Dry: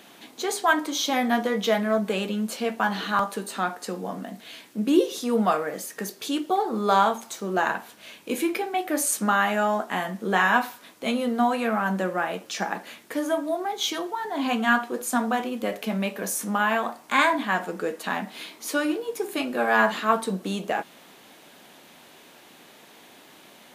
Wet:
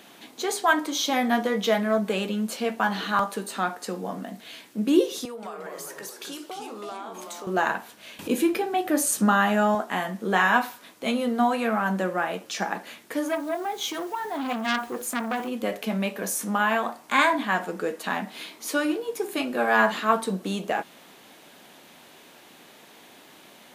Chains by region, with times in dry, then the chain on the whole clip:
0:05.25–0:07.47: high-pass filter 400 Hz + downward compressor 8 to 1, threshold −34 dBFS + delay with pitch and tempo change per echo 176 ms, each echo −2 semitones, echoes 3, each echo −6 dB
0:08.19–0:09.75: low-shelf EQ 210 Hz +11 dB + notch filter 2,200 Hz, Q 11 + upward compression, threshold −26 dBFS
0:13.28–0:15.48: dynamic equaliser 4,200 Hz, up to −5 dB, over −42 dBFS, Q 1 + bit-depth reduction 8 bits, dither none + saturating transformer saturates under 2,400 Hz
whole clip: no processing

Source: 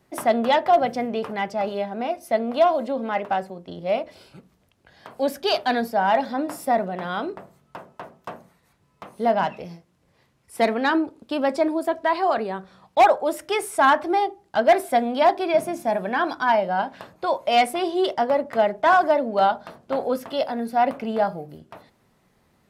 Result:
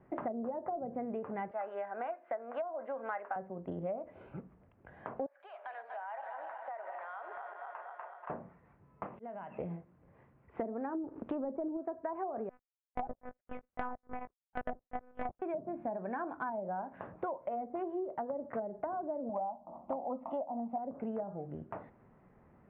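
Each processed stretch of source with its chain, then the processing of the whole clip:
0:01.51–0:03.36: high-pass filter 650 Hz + parametric band 1,600 Hz +7 dB 0.64 octaves
0:05.26–0:08.30: feedback delay that plays each chunk backwards 120 ms, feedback 80%, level −12.5 dB + Bessel high-pass filter 1,000 Hz, order 6 + downward compressor 10 to 1, threshold −39 dBFS
0:09.06–0:09.59: volume swells 740 ms + low-pass with resonance 3,000 Hz, resonance Q 2.2 + downward compressor, threshold −42 dBFS
0:11.04–0:11.77: upward compression, threshold −30 dBFS + leveller curve on the samples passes 1
0:12.49–0:15.42: power curve on the samples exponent 3 + one-pitch LPC vocoder at 8 kHz 250 Hz
0:19.29–0:20.78: parametric band 900 Hz +11 dB 1.3 octaves + phaser with its sweep stopped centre 430 Hz, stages 6
whole clip: Bessel low-pass filter 1,300 Hz, order 8; treble cut that deepens with the level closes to 550 Hz, closed at −17 dBFS; downward compressor 8 to 1, threshold −37 dBFS; level +1.5 dB

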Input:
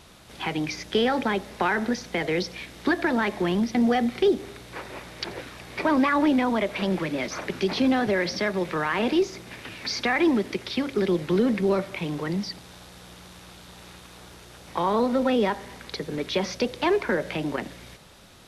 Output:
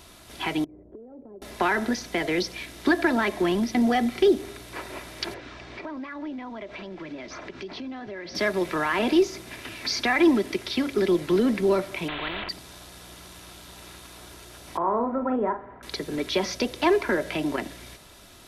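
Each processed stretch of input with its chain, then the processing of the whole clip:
0:00.64–0:01.42: transistor ladder low-pass 620 Hz, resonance 35% + downward compressor 5 to 1, threshold −43 dBFS
0:05.34–0:08.35: low-pass filter 6,500 Hz 24 dB per octave + high-shelf EQ 5,000 Hz −8.5 dB + downward compressor 4 to 1, threshold −37 dBFS
0:12.08–0:12.49: variable-slope delta modulation 16 kbit/s + every bin compressed towards the loudest bin 4 to 1
0:14.77–0:15.83: low-pass filter 1,400 Hz 24 dB per octave + low-shelf EQ 450 Hz −6 dB + double-tracking delay 43 ms −8.5 dB
whole clip: high-shelf EQ 10,000 Hz +9.5 dB; comb filter 3 ms, depth 39%

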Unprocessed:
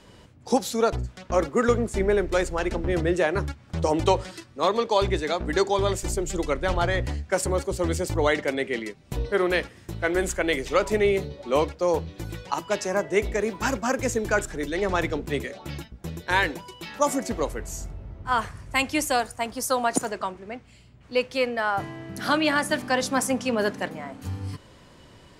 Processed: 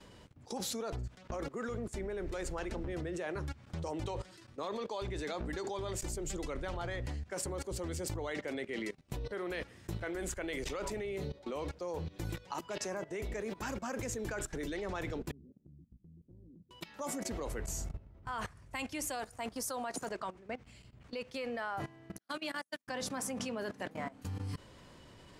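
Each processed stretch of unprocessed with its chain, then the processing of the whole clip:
0:15.31–0:16.71: inverse Chebyshev low-pass filter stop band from 1,100 Hz, stop band 70 dB + low-shelf EQ 160 Hz −9.5 dB + downward compressor 3 to 1, threshold −44 dBFS
0:22.18–0:22.88: noise gate −22 dBFS, range −54 dB + high-pass filter 180 Hz + high-shelf EQ 5,000 Hz +11.5 dB
whole clip: brickwall limiter −15 dBFS; output level in coarse steps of 18 dB; level −2 dB

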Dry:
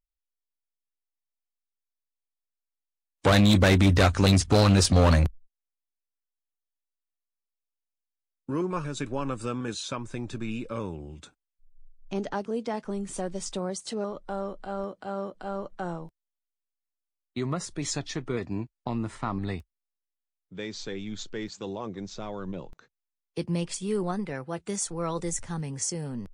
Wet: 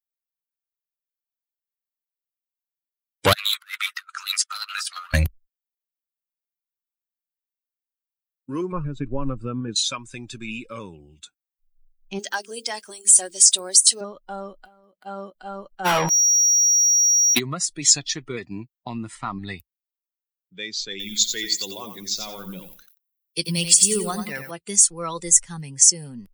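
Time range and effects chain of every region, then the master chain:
0:03.33–0:05.14: four-pole ladder high-pass 1,200 Hz, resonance 70% + compressor whose output falls as the input rises −38 dBFS, ratio −0.5
0:08.72–0:09.76: low-pass filter 1,200 Hz 6 dB per octave + spectral tilt −2 dB per octave
0:12.19–0:14.01: RIAA equalisation recording + mains-hum notches 50/100/150/200/250/300/350/400/450/500 Hz + hollow resonant body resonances 340/1,600 Hz, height 7 dB
0:14.65–0:15.06: running median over 9 samples + downward compressor, threshold −43 dBFS
0:15.84–0:17.38: mid-hump overdrive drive 36 dB, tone 2,200 Hz, clips at −21.5 dBFS + steady tone 5,700 Hz −53 dBFS + envelope flattener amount 50%
0:20.91–0:24.51: high-shelf EQ 3,100 Hz +8.5 dB + feedback echo at a low word length 89 ms, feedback 35%, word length 9 bits, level −5 dB
whole clip: spectral dynamics exaggerated over time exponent 1.5; first-order pre-emphasis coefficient 0.9; boost into a limiter +23.5 dB; level −1 dB

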